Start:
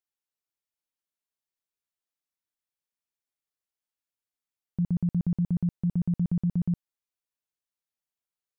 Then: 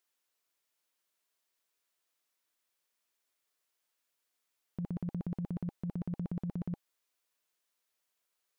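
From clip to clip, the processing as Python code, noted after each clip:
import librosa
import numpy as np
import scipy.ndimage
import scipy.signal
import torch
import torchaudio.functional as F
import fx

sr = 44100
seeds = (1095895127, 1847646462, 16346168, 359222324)

y = fx.bass_treble(x, sr, bass_db=-12, treble_db=-1)
y = fx.notch(y, sr, hz=810.0, q=13.0)
y = fx.over_compress(y, sr, threshold_db=-40.0, ratio=-1.0)
y = y * librosa.db_to_amplitude(4.5)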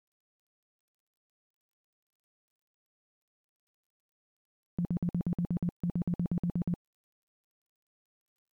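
y = fx.low_shelf(x, sr, hz=480.0, db=6.0)
y = fx.quant_dither(y, sr, seeds[0], bits=12, dither='none')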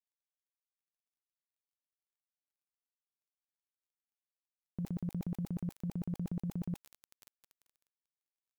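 y = fx.sustainer(x, sr, db_per_s=43.0)
y = y * librosa.db_to_amplitude(-6.0)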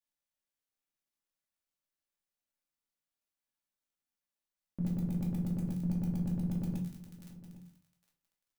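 y = x + 10.0 ** (-17.0 / 20.0) * np.pad(x, (int(808 * sr / 1000.0), 0))[:len(x)]
y = fx.room_shoebox(y, sr, seeds[1], volume_m3=320.0, walls='furnished', distance_m=2.4)
y = y * librosa.db_to_amplitude(-1.5)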